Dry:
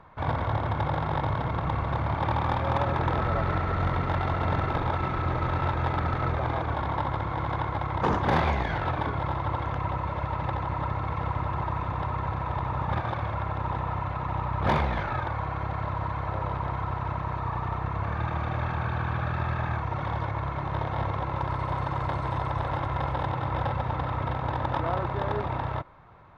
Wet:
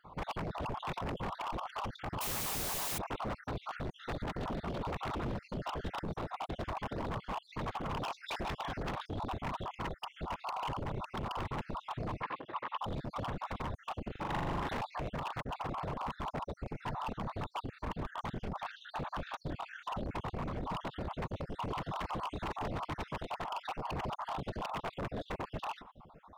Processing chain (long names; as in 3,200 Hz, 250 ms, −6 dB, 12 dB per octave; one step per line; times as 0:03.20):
time-frequency cells dropped at random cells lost 60%
flat-topped bell 1,800 Hz −9.5 dB 1 octave
downward compressor 2.5 to 1, threshold −34 dBFS, peak gain reduction 8.5 dB
0:02.21–0:02.98: bit-depth reduction 6 bits, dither triangular
random phases in short frames
wave folding −33 dBFS
0:12.22–0:12.82: loudspeaker in its box 370–4,100 Hz, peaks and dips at 710 Hz −6 dB, 1,100 Hz +6 dB, 1,800 Hz +7 dB
0:14.11–0:14.69: flutter between parallel walls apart 7.1 metres, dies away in 1 s
level +1.5 dB